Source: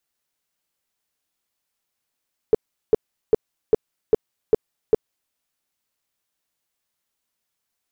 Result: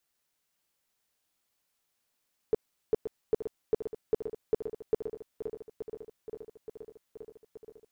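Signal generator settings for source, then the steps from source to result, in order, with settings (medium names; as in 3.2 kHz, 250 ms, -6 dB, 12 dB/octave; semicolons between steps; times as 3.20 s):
tone bursts 437 Hz, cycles 7, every 0.40 s, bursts 7, -9 dBFS
peak limiter -19 dBFS; on a send: shuffle delay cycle 875 ms, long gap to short 1.5:1, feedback 60%, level -10 dB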